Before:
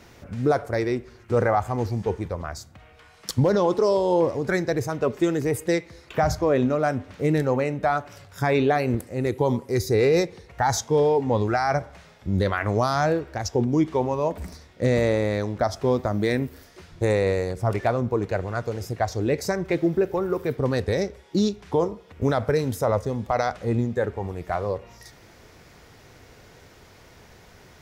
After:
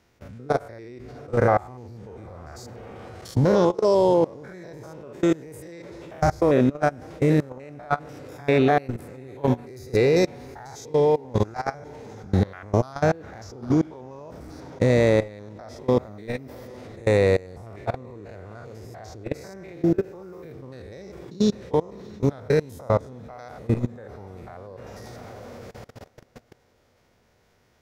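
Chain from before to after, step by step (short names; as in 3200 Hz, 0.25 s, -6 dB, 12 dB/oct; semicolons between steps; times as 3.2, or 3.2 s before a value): stepped spectrum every 0.1 s; diffused feedback echo 0.773 s, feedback 53%, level -15.5 dB; level quantiser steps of 23 dB; gain +5.5 dB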